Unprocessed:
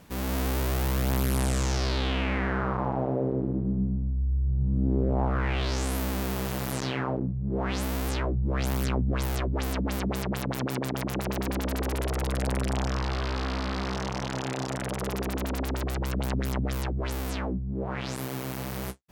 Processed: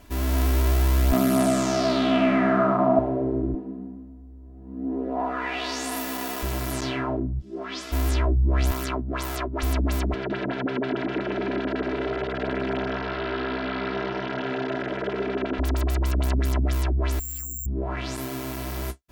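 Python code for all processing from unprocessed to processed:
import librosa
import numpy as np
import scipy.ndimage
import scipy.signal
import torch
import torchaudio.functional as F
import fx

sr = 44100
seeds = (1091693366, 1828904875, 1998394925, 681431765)

y = fx.chain(x, sr, fx.highpass(hz=130.0, slope=24),
    fx.small_body(hz=(220.0, 660.0, 1200.0), ring_ms=45, db=15), at=(1.12, 2.99))
y = fx.chain(y, sr, fx.highpass(hz=340.0, slope=12),
    fx.comb(ms=4.1, depth=0.66), at=(3.54, 6.43))
y = fx.dmg_crackle(y, sr, seeds[0], per_s=570.0, level_db=-51.0, at=(7.39, 7.91), fade=0.02)
y = fx.cabinet(y, sr, low_hz=340.0, low_slope=12, high_hz=9500.0, hz=(540.0, 870.0, 3400.0, 5100.0, 9000.0), db=(-5, -9, 4, 6, -8), at=(7.39, 7.91), fade=0.02)
y = fx.ensemble(y, sr, at=(7.39, 7.91), fade=0.02)
y = fx.chain(y, sr, fx.highpass(hz=270.0, slope=6),
    fx.peak_eq(hz=1200.0, db=4.5, octaves=0.78), at=(8.71, 9.63))
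y = fx.chain(y, sr, fx.cabinet(low_hz=110.0, low_slope=24, high_hz=3500.0, hz=(440.0, 1100.0, 1500.0), db=(6, -6, 6)),
    fx.echo_single(ms=158, db=-4.5), at=(10.14, 15.59))
y = fx.chain(y, sr, fx.tone_stack(knobs='6-0-2'),
    fx.resample_bad(factor=6, down='filtered', up='zero_stuff'), at=(17.19, 17.66))
y = fx.low_shelf(y, sr, hz=64.0, db=9.5)
y = y + 0.82 * np.pad(y, (int(3.0 * sr / 1000.0), 0))[:len(y)]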